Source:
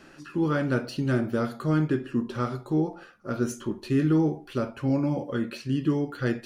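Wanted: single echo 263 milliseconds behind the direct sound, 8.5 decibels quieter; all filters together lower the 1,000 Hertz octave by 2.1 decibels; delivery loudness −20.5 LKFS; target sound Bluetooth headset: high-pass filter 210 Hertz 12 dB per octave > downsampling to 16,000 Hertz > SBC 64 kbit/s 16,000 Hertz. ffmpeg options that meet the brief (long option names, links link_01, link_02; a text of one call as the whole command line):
ffmpeg -i in.wav -af "highpass=210,equalizer=frequency=1000:width_type=o:gain=-3,aecho=1:1:263:0.376,aresample=16000,aresample=44100,volume=8.5dB" -ar 16000 -c:a sbc -b:a 64k out.sbc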